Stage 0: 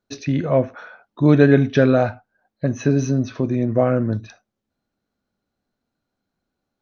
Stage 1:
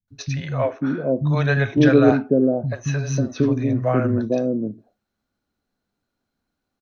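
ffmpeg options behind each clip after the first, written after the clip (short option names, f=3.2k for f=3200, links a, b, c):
-filter_complex "[0:a]acrossover=split=170|560[a][b][c];[c]adelay=80[d];[b]adelay=540[e];[a][e][d]amix=inputs=3:normalize=0,volume=1.5dB"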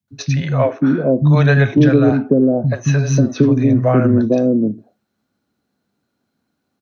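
-filter_complex "[0:a]highpass=100,equalizer=f=190:w=0.56:g=4.5,acrossover=split=140[a][b];[b]acompressor=threshold=-15dB:ratio=10[c];[a][c]amix=inputs=2:normalize=0,volume=5.5dB"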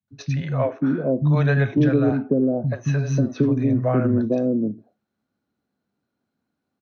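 -af "highshelf=f=4.2k:g=-8.5,volume=-6.5dB"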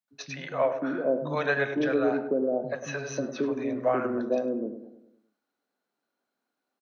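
-filter_complex "[0:a]highpass=480,asplit=2[a][b];[b]adelay=102,lowpass=f=1.4k:p=1,volume=-9dB,asplit=2[c][d];[d]adelay=102,lowpass=f=1.4k:p=1,volume=0.51,asplit=2[e][f];[f]adelay=102,lowpass=f=1.4k:p=1,volume=0.51,asplit=2[g][h];[h]adelay=102,lowpass=f=1.4k:p=1,volume=0.51,asplit=2[i][j];[j]adelay=102,lowpass=f=1.4k:p=1,volume=0.51,asplit=2[k][l];[l]adelay=102,lowpass=f=1.4k:p=1,volume=0.51[m];[c][e][g][i][k][m]amix=inputs=6:normalize=0[n];[a][n]amix=inputs=2:normalize=0"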